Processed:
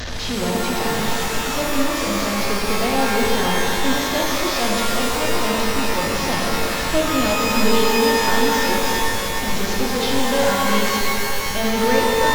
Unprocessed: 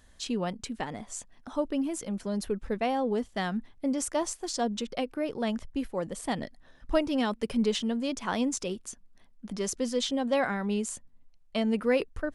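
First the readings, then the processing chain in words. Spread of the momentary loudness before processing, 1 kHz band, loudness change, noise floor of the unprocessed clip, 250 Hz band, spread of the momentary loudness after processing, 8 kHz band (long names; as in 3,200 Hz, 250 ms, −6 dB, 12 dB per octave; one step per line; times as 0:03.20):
9 LU, +15.5 dB, +11.5 dB, −58 dBFS, +7.5 dB, 5 LU, +13.0 dB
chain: linear delta modulator 32 kbit/s, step −24.5 dBFS
reverb with rising layers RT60 3.2 s, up +12 semitones, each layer −2 dB, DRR −2.5 dB
level +2 dB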